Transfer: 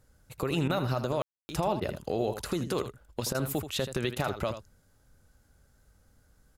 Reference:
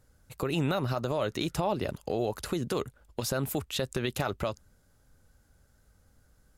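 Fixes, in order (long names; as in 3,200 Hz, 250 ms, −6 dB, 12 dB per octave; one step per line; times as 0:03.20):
ambience match 0:01.22–0:01.49
repair the gap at 0:00.68/0:01.80/0:03.33/0:04.15, 15 ms
echo removal 80 ms −10.5 dB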